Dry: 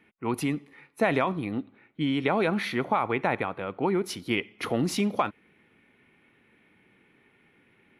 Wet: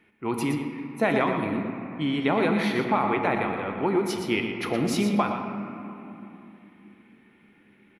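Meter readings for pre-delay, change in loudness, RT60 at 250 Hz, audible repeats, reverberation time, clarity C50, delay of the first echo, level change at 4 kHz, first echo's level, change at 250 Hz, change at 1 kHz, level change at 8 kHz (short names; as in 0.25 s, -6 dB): 3 ms, +2.0 dB, 5.1 s, 1, 3.0 s, 3.5 dB, 0.119 s, +1.0 dB, -8.5 dB, +3.5 dB, +2.5 dB, +1.0 dB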